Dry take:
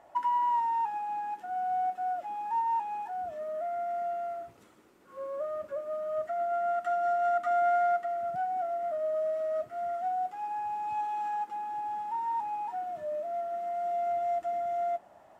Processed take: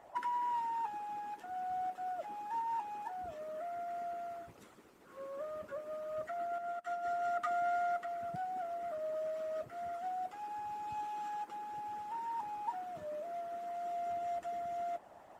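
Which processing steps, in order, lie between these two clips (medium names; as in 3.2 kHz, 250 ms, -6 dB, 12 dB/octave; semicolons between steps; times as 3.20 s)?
harmonic-percussive split harmonic -13 dB; 6.58–7.10 s: upward expansion 2.5:1, over -52 dBFS; trim +5 dB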